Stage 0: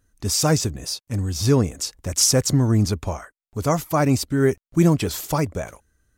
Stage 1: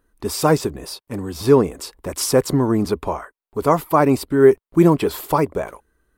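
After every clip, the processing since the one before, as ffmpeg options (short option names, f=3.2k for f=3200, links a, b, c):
-af "equalizer=f=100:t=o:w=0.67:g=-12,equalizer=f=400:t=o:w=0.67:g=8,equalizer=f=1k:t=o:w=0.67:g=8,equalizer=f=6.3k:t=o:w=0.67:g=-12,volume=1dB"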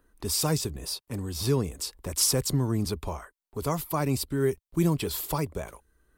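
-filter_complex "[0:a]acrossover=split=140|3000[a][b][c];[b]acompressor=threshold=-54dB:ratio=1.5[d];[a][d][c]amix=inputs=3:normalize=0"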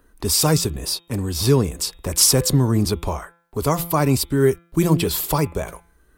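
-af "bandreject=f=170:t=h:w=4,bandreject=f=340:t=h:w=4,bandreject=f=510:t=h:w=4,bandreject=f=680:t=h:w=4,bandreject=f=850:t=h:w=4,bandreject=f=1.02k:t=h:w=4,bandreject=f=1.19k:t=h:w=4,bandreject=f=1.36k:t=h:w=4,bandreject=f=1.53k:t=h:w=4,bandreject=f=1.7k:t=h:w=4,bandreject=f=1.87k:t=h:w=4,bandreject=f=2.04k:t=h:w=4,bandreject=f=2.21k:t=h:w=4,bandreject=f=2.38k:t=h:w=4,bandreject=f=2.55k:t=h:w=4,bandreject=f=2.72k:t=h:w=4,bandreject=f=2.89k:t=h:w=4,bandreject=f=3.06k:t=h:w=4,bandreject=f=3.23k:t=h:w=4,bandreject=f=3.4k:t=h:w=4,bandreject=f=3.57k:t=h:w=4,bandreject=f=3.74k:t=h:w=4,volume=9dB"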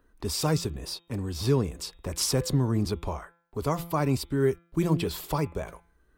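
-af "equalizer=f=12k:w=0.48:g=-9.5,volume=-7.5dB"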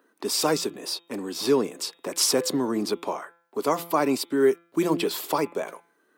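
-af "highpass=f=250:w=0.5412,highpass=f=250:w=1.3066,volume=5.5dB"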